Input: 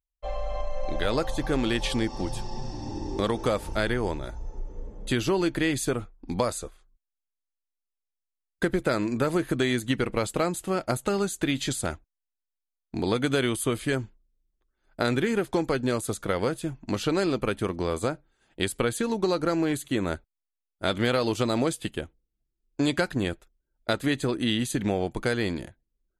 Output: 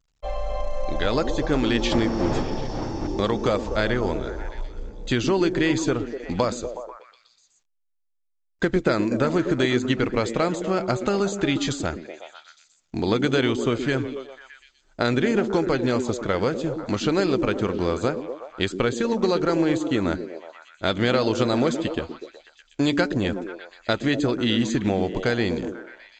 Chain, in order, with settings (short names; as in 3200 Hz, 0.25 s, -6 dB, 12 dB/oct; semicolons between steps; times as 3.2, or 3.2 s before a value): 1.91–3.06 wind noise 560 Hz -25 dBFS; delay with a stepping band-pass 0.123 s, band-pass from 270 Hz, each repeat 0.7 oct, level -4 dB; gain +3 dB; A-law 128 kbps 16000 Hz